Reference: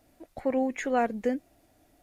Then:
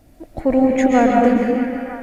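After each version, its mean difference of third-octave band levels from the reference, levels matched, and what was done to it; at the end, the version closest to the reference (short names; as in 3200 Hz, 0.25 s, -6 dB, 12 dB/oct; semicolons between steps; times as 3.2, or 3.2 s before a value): 6.5 dB: low shelf 250 Hz +11.5 dB; delay with a stepping band-pass 0.316 s, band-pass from 3100 Hz, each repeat -0.7 oct, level -5.5 dB; digital reverb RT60 1.6 s, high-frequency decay 0.75×, pre-delay 95 ms, DRR -1 dB; gain +7 dB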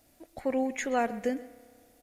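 3.5 dB: high shelf 3000 Hz +8.5 dB; echo 0.129 s -18 dB; spring tank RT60 2 s, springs 30 ms, chirp 50 ms, DRR 18 dB; gain -2.5 dB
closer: second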